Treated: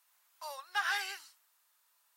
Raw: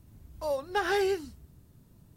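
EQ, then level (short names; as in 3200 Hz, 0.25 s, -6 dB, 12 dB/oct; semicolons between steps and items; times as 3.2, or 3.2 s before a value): HPF 1000 Hz 24 dB/oct; 0.0 dB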